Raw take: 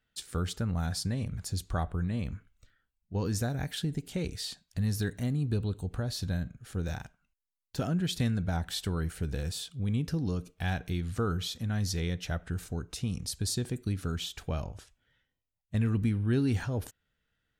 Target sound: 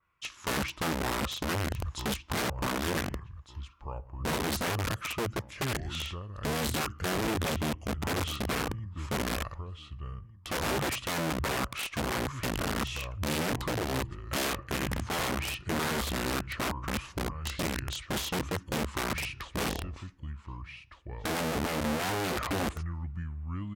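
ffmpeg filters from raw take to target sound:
ffmpeg -i in.wav -filter_complex "[0:a]firequalizer=gain_entry='entry(110,0);entry(210,-6);entry(720,-3);entry(1400,3);entry(6300,-7);entry(12000,-9)':delay=0.05:min_phase=1,asplit=2[link_01][link_02];[link_02]adelay=1118,lowpass=frequency=4700:poles=1,volume=-11dB,asplit=2[link_03][link_04];[link_04]adelay=1118,lowpass=frequency=4700:poles=1,volume=0.18[link_05];[link_03][link_05]amix=inputs=2:normalize=0[link_06];[link_01][link_06]amix=inputs=2:normalize=0,acontrast=48,aeval=exprs='(mod(15.8*val(0)+1,2)-1)/15.8':channel_layout=same,highpass=67,asetrate=32667,aresample=44100,adynamicequalizer=threshold=0.00794:dfrequency=2900:dqfactor=0.7:tfrequency=2900:tqfactor=0.7:attack=5:release=100:ratio=0.375:range=1.5:mode=cutabove:tftype=highshelf,volume=-1.5dB" out.wav

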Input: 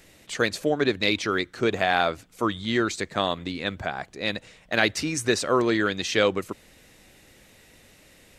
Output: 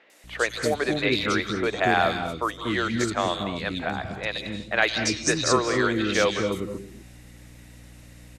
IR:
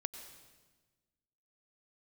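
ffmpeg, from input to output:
-filter_complex "[0:a]aeval=exprs='val(0)+0.00447*(sin(2*PI*60*n/s)+sin(2*PI*2*60*n/s)/2+sin(2*PI*3*60*n/s)/3+sin(2*PI*4*60*n/s)/4+sin(2*PI*5*60*n/s)/5)':channel_layout=same,asettb=1/sr,asplit=3[link_01][link_02][link_03];[link_01]atrim=end=4.784[link_04];[link_02]atrim=start=4.78:end=5.56,asetpts=PTS-STARTPTS,afade=type=in:duration=0.004:curve=qsin,afade=type=out:start_time=0.776:duration=0.004:curve=qsin,lowpass=frequency=6300:width_type=q:width=1.6[link_05];[link_03]atrim=start=5.556[link_06];[link_04][link_05]acrossfade=duration=0.004:curve1=hsin:curve2=qsin[link_07];[link_07][link_06]acrossfade=duration=0.004:curve1=qsin:curve2=hsin,acrossover=split=390|3200[link_08][link_09][link_10];[link_10]adelay=100[link_11];[link_08]adelay=240[link_12];[link_12][link_09][link_11]amix=inputs=3:normalize=0[link_13];[1:a]atrim=start_sample=2205,atrim=end_sample=6174,asetrate=23814,aresample=44100[link_14];[link_13][link_14]afir=irnorm=-1:irlink=0"

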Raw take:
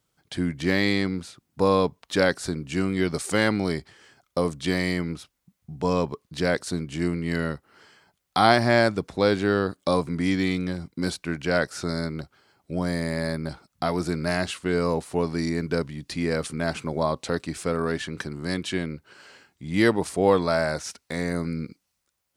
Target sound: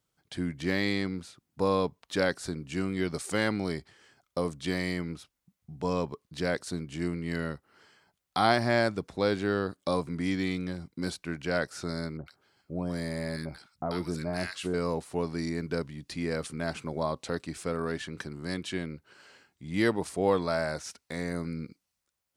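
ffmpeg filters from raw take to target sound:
ffmpeg -i in.wav -filter_complex "[0:a]asettb=1/sr,asplit=3[link_01][link_02][link_03];[link_01]atrim=end=12.174[link_04];[link_02]atrim=start=12.17:end=14.74,asetpts=PTS-STARTPTS,afade=type=in:duration=0.004:curve=qsin,afade=type=out:start_time=2.566:duration=0.004:curve=qsin,acrossover=split=1200[link_05][link_06];[link_06]adelay=90[link_07];[link_05][link_07]amix=inputs=2:normalize=0,atrim=end_sample=113337[link_08];[link_03]atrim=start=14.736[link_09];[link_04][link_08]acrossfade=duration=0.004:curve1=hsin:curve2=qsin[link_10];[link_10][link_09]acrossfade=duration=0.004:curve1=qsin:curve2=hsin,volume=-6dB" out.wav

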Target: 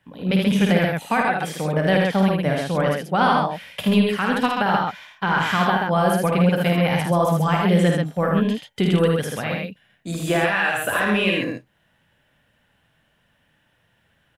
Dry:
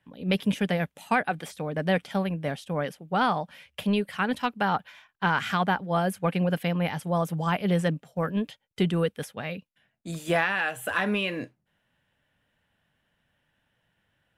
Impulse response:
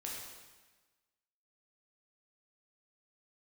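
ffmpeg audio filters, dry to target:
-af "alimiter=limit=-17.5dB:level=0:latency=1:release=176,aecho=1:1:52|78|133:0.531|0.631|0.668,volume=6dB"

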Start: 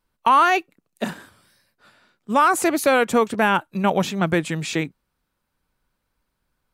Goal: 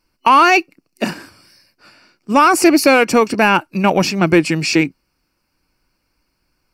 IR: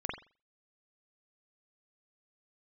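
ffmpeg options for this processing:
-filter_complex "[0:a]superequalizer=6b=2:12b=2:13b=0.501:14b=3.16,asplit=2[link_01][link_02];[link_02]acontrast=49,volume=2dB[link_03];[link_01][link_03]amix=inputs=2:normalize=0,volume=-5dB"

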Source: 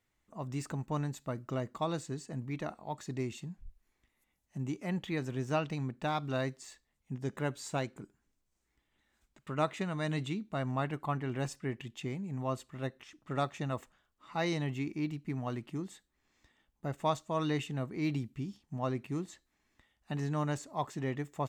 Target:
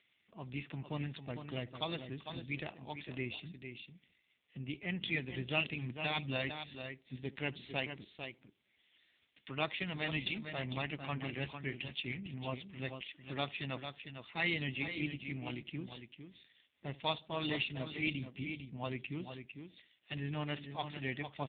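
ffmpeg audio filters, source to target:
ffmpeg -i in.wav -filter_complex "[0:a]aexciter=amount=5.4:drive=8.2:freq=2000,asplit=2[link_01][link_02];[link_02]adelay=71,lowpass=frequency=1000:poles=1,volume=-19dB,asplit=2[link_03][link_04];[link_04]adelay=71,lowpass=frequency=1000:poles=1,volume=0.44,asplit=2[link_05][link_06];[link_06]adelay=71,lowpass=frequency=1000:poles=1,volume=0.44[link_07];[link_03][link_05][link_07]amix=inputs=3:normalize=0[link_08];[link_01][link_08]amix=inputs=2:normalize=0,acompressor=mode=upward:threshold=-51dB:ratio=2.5,highshelf=frequency=2500:gain=-2,asplit=2[link_09][link_10];[link_10]aecho=0:1:451:0.398[link_11];[link_09][link_11]amix=inputs=2:normalize=0,volume=-5dB" -ar 8000 -c:a libopencore_amrnb -b:a 5900 out.amr

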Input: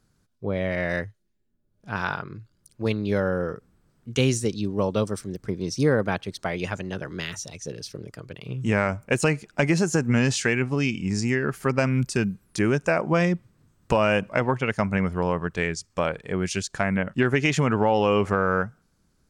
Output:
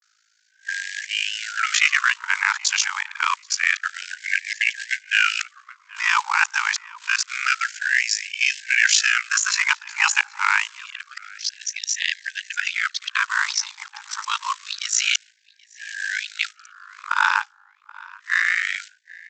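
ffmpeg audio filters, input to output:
ffmpeg -i in.wav -filter_complex "[0:a]areverse,highpass=frequency=110:width=0.5412,highpass=frequency=110:width=1.3066,equalizer=frequency=200:width_type=o:width=2.7:gain=-5,bandreject=frequency=60:width_type=h:width=6,bandreject=frequency=120:width_type=h:width=6,bandreject=frequency=180:width_type=h:width=6,bandreject=frequency=240:width_type=h:width=6,bandreject=frequency=300:width_type=h:width=6,bandreject=frequency=360:width_type=h:width=6,bandreject=frequency=420:width_type=h:width=6,bandreject=frequency=480:width_type=h:width=6,bandreject=frequency=540:width_type=h:width=6,aresample=16000,acrusher=bits=5:mode=log:mix=0:aa=0.000001,aresample=44100,apsyclip=18.5dB,aeval=exprs='val(0)*sin(2*PI*27*n/s)':channel_layout=same,asplit=2[link_01][link_02];[link_02]adelay=779,lowpass=frequency=2200:poles=1,volume=-20dB,asplit=2[link_03][link_04];[link_04]adelay=779,lowpass=frequency=2200:poles=1,volume=0.33,asplit=2[link_05][link_06];[link_06]adelay=779,lowpass=frequency=2200:poles=1,volume=0.33[link_07];[link_03][link_05][link_07]amix=inputs=3:normalize=0[link_08];[link_01][link_08]amix=inputs=2:normalize=0,afftfilt=real='re*gte(b*sr/1024,800*pow(1600/800,0.5+0.5*sin(2*PI*0.27*pts/sr)))':imag='im*gte(b*sr/1024,800*pow(1600/800,0.5+0.5*sin(2*PI*0.27*pts/sr)))':win_size=1024:overlap=0.75,volume=-3.5dB" out.wav

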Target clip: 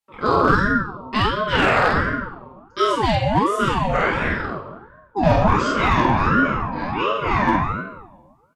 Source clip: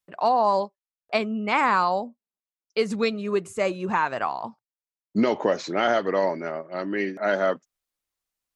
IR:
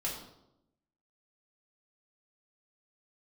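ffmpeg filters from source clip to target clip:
-filter_complex "[1:a]atrim=start_sample=2205,asetrate=29106,aresample=44100[link_01];[0:a][link_01]afir=irnorm=-1:irlink=0,asoftclip=type=hard:threshold=-7.5dB,asplit=2[link_02][link_03];[link_03]adelay=48,volume=-3dB[link_04];[link_02][link_04]amix=inputs=2:normalize=0,aeval=exprs='val(0)*sin(2*PI*590*n/s+590*0.45/1.4*sin(2*PI*1.4*n/s))':channel_layout=same"

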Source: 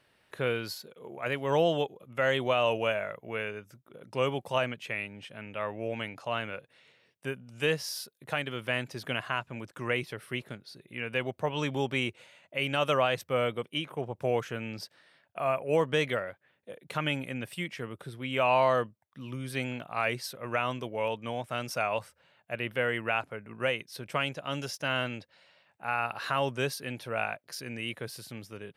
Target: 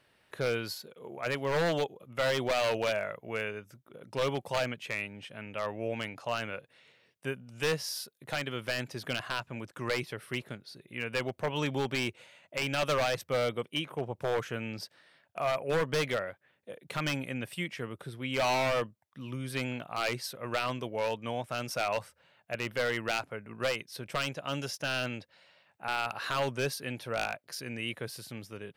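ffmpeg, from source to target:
ffmpeg -i in.wav -af "aeval=exprs='0.0794*(abs(mod(val(0)/0.0794+3,4)-2)-1)':channel_layout=same" out.wav

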